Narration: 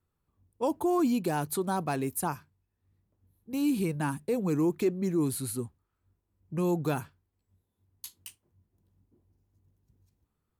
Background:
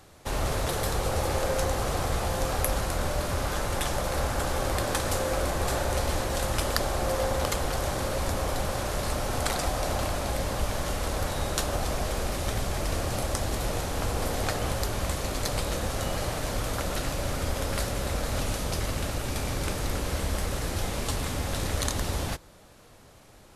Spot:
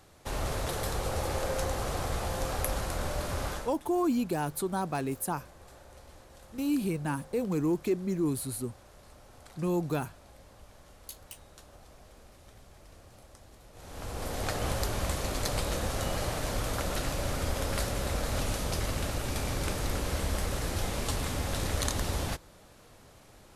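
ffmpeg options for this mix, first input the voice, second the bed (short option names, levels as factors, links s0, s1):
-filter_complex "[0:a]adelay=3050,volume=0.841[s0];[1:a]volume=8.41,afade=t=out:st=3.48:d=0.26:silence=0.0944061,afade=t=in:st=13.73:d=0.96:silence=0.0707946[s1];[s0][s1]amix=inputs=2:normalize=0"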